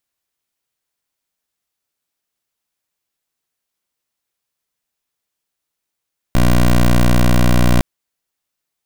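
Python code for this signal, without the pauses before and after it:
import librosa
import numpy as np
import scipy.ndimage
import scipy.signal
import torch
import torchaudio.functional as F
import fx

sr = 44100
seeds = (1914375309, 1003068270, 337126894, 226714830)

y = fx.pulse(sr, length_s=1.46, hz=60.4, level_db=-10.5, duty_pct=14)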